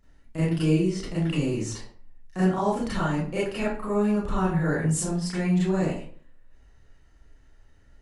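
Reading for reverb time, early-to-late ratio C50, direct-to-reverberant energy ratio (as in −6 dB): 0.50 s, 1.0 dB, −10.5 dB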